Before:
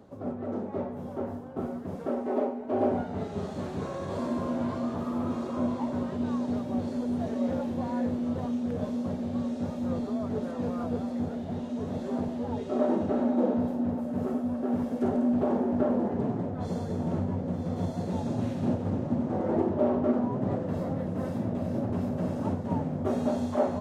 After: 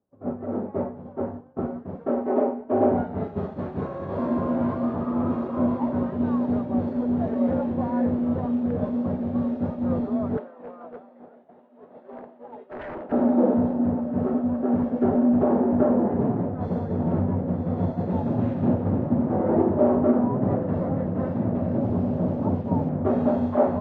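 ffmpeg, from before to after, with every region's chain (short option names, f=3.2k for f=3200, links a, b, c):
-filter_complex "[0:a]asettb=1/sr,asplit=3[a][b][c];[a]atrim=end=10.374[d];[b]atrim=start=10.37:end=13.12,asetpts=PTS-STARTPTS,afade=t=in:d=0.004:c=qsin,afade=t=out:st=2.746:d=0.004:c=qsin,highpass=470,lowpass=3.3k,aeval=exprs='0.0316*(abs(mod(val(0)/0.0316+3,4)-2)-1)':c=same[e];[c]atrim=start=13.116[f];[d][e]acrossfade=d=0.004:c1=hsin:c2=qsin[g];[g][f]acrossfade=d=0.004:c1=qsin:c2=hsin,asettb=1/sr,asplit=3[h][i][j];[h]atrim=end=21.814[k];[i]atrim=start=21.81:end=22.89,asetpts=PTS-STARTPTS,afade=t=in:d=0.004:c=qsin,afade=t=out:st=1.076:d=0.004:c=qsin,lowpass=1.1k,acrusher=bits=7:mix=0:aa=0.5[l];[j]atrim=start=22.886[m];[k][l]acrossfade=d=0.004:c1=hsin:c2=qsin[n];[n][m]acrossfade=d=0.004:c1=qsin:c2=hsin,acontrast=52,lowpass=1.7k,agate=range=-33dB:threshold=-24dB:ratio=3:detection=peak"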